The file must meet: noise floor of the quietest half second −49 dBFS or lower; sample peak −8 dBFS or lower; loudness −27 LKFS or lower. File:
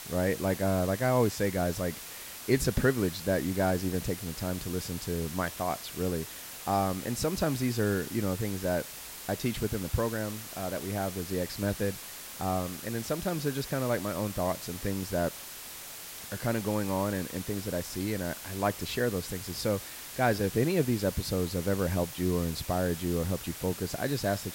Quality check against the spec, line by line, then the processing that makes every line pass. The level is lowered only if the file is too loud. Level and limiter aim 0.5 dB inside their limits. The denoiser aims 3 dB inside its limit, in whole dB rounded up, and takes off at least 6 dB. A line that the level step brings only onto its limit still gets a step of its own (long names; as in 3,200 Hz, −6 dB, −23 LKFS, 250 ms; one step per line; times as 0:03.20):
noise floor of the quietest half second −44 dBFS: out of spec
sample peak −12.0 dBFS: in spec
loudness −31.5 LKFS: in spec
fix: broadband denoise 8 dB, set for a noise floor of −44 dBFS